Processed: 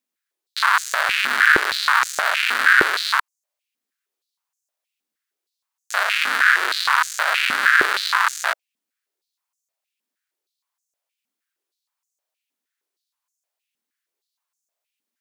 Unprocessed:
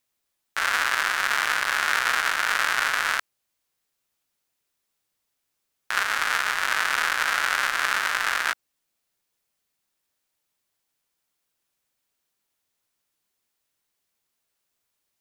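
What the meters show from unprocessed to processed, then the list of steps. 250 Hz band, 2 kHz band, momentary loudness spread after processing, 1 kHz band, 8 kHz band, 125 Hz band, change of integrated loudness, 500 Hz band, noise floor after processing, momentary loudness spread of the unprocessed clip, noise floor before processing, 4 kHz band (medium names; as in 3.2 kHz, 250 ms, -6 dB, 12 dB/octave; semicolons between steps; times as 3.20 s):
+10.0 dB, +6.0 dB, 8 LU, +5.5 dB, +1.5 dB, no reading, +5.5 dB, +7.5 dB, -85 dBFS, 4 LU, -79 dBFS, +5.0 dB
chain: waveshaping leveller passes 2; step-sequenced high-pass 6.4 Hz 240–6600 Hz; trim -3 dB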